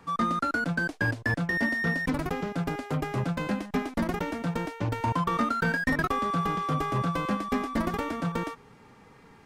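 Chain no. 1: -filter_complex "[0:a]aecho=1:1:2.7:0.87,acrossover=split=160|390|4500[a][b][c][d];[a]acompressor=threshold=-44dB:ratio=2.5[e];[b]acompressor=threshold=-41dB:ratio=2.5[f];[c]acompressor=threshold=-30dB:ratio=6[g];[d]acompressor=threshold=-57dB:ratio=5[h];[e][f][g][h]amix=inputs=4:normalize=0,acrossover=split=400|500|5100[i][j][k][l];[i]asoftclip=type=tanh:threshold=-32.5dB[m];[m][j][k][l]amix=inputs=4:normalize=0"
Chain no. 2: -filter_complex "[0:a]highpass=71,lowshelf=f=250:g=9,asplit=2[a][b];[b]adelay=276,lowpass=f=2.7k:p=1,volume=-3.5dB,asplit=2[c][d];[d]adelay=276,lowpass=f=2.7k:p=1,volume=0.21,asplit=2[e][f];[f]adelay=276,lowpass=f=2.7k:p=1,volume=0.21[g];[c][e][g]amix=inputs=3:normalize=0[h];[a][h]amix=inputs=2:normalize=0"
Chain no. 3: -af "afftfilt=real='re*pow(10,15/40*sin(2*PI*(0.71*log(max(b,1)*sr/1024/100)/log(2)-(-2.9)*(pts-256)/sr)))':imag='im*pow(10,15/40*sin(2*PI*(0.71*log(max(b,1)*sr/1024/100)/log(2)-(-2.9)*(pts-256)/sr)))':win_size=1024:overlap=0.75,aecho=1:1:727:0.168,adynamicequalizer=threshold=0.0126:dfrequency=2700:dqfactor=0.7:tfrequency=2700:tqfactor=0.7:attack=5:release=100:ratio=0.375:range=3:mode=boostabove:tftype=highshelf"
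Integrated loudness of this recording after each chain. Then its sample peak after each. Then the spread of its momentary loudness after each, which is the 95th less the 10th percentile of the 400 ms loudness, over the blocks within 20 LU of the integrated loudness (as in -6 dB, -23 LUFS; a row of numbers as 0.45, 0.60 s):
-32.5, -24.0, -25.5 LUFS; -18.5, -8.5, -9.5 dBFS; 4, 3, 8 LU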